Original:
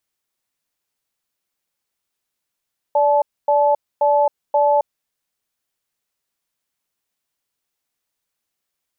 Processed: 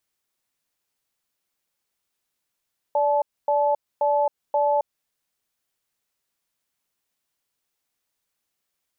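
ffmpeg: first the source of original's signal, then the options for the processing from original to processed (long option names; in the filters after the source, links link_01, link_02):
-f lavfi -i "aevalsrc='0.178*(sin(2*PI*582*t)+sin(2*PI*865*t))*clip(min(mod(t,0.53),0.27-mod(t,0.53))/0.005,0,1)':duration=1.9:sample_rate=44100"
-af "alimiter=limit=-14.5dB:level=0:latency=1:release=173"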